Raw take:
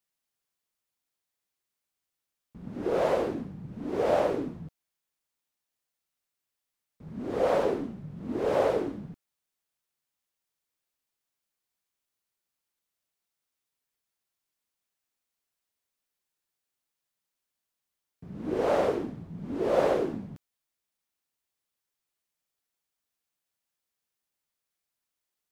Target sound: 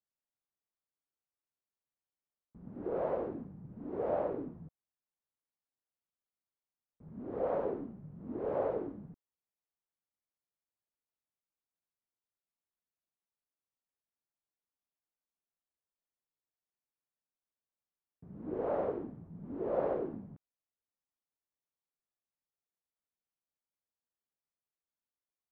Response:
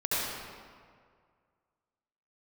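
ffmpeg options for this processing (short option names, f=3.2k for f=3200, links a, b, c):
-af "lowpass=1.2k,volume=-8dB"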